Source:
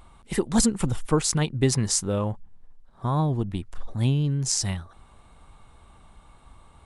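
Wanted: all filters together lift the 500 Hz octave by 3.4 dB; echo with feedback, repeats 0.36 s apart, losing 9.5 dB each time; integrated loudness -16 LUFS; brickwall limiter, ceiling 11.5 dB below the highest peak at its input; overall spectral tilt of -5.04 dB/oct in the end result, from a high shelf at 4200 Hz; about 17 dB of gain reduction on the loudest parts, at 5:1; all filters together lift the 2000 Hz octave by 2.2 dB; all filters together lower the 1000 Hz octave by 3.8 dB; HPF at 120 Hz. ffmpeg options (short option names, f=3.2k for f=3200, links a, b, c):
-af "highpass=120,equalizer=f=500:t=o:g=5.5,equalizer=f=1k:t=o:g=-7.5,equalizer=f=2k:t=o:g=5.5,highshelf=f=4.2k:g=-5,acompressor=threshold=-35dB:ratio=5,alimiter=level_in=6dB:limit=-24dB:level=0:latency=1,volume=-6dB,aecho=1:1:360|720|1080|1440:0.335|0.111|0.0365|0.012,volume=24.5dB"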